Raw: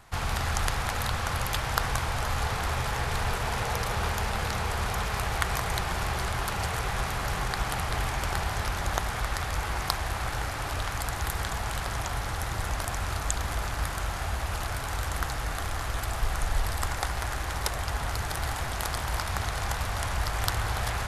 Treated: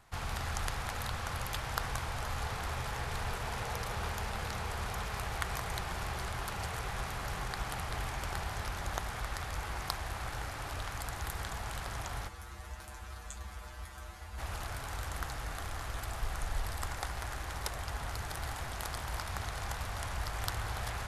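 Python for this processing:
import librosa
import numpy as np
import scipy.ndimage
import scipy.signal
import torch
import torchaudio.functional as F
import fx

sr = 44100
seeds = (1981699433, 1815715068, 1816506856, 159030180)

y = fx.comb_fb(x, sr, f0_hz=68.0, decay_s=0.16, harmonics='odd', damping=0.0, mix_pct=100, at=(12.27, 14.37), fade=0.02)
y = y * librosa.db_to_amplitude(-8.0)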